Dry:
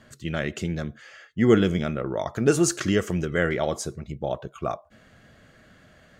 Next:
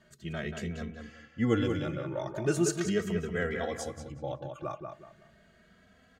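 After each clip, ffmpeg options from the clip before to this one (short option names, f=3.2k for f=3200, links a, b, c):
-filter_complex "[0:a]asplit=2[a][b];[b]adelay=185,lowpass=f=3.8k:p=1,volume=-5.5dB,asplit=2[c][d];[d]adelay=185,lowpass=f=3.8k:p=1,volume=0.3,asplit=2[e][f];[f]adelay=185,lowpass=f=3.8k:p=1,volume=0.3,asplit=2[g][h];[h]adelay=185,lowpass=f=3.8k:p=1,volume=0.3[i];[c][e][g][i]amix=inputs=4:normalize=0[j];[a][j]amix=inputs=2:normalize=0,asplit=2[k][l];[l]adelay=2.8,afreqshift=0.38[m];[k][m]amix=inputs=2:normalize=1,volume=-5.5dB"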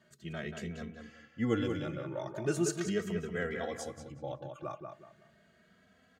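-af "highpass=94,volume=-3.5dB"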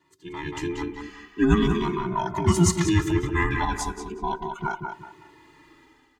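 -af "afftfilt=real='real(if(between(b,1,1008),(2*floor((b-1)/24)+1)*24-b,b),0)':imag='imag(if(between(b,1,1008),(2*floor((b-1)/24)+1)*24-b,b),0)*if(between(b,1,1008),-1,1)':win_size=2048:overlap=0.75,dynaudnorm=f=210:g=5:m=12dB"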